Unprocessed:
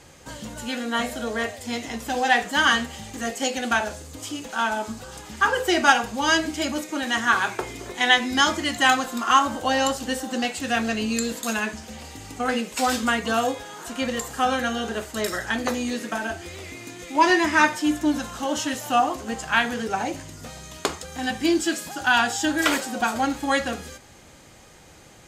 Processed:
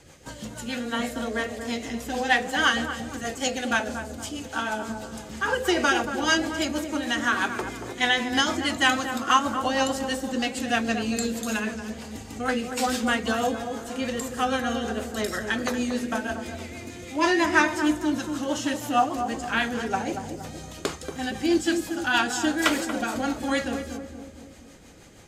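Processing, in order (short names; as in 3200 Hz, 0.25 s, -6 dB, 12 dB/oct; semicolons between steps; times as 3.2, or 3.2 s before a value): rotary speaker horn 6.3 Hz; darkening echo 0.233 s, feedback 58%, low-pass 830 Hz, level -5.5 dB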